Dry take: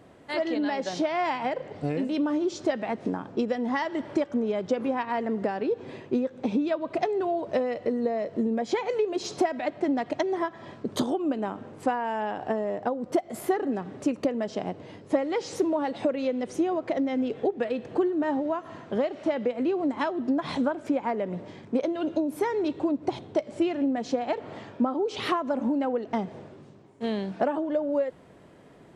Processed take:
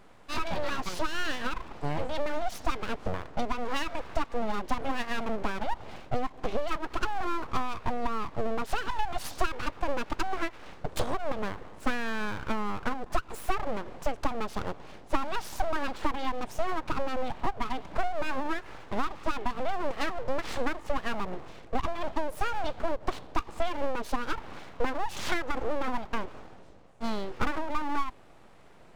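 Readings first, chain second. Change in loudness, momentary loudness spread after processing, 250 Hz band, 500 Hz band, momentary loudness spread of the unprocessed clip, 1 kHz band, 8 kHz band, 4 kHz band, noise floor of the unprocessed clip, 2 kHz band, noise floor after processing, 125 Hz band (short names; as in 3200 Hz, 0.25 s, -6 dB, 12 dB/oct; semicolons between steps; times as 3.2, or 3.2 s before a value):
-5.5 dB, 4 LU, -10.5 dB, -8.0 dB, 5 LU, -0.5 dB, 0.0 dB, +1.0 dB, -51 dBFS, +2.0 dB, -51 dBFS, +1.0 dB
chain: full-wave rectifier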